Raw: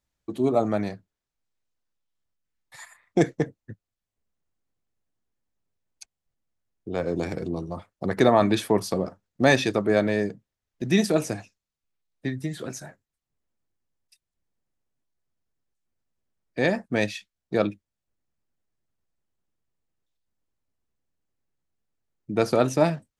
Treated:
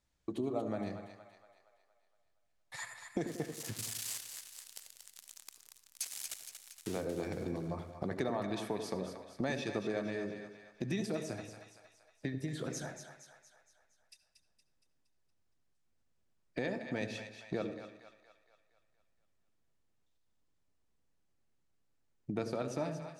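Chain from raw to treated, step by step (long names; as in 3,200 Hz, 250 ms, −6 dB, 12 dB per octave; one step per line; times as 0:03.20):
0:03.27–0:07.01: spike at every zero crossing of −23 dBFS
low-pass filter 10,000 Hz 12 dB per octave
downward compressor 4 to 1, threshold −38 dBFS, peak gain reduction 20.5 dB
echo with a time of its own for lows and highs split 670 Hz, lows 91 ms, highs 233 ms, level −8 dB
convolution reverb RT60 0.65 s, pre-delay 65 ms, DRR 13 dB
level +1 dB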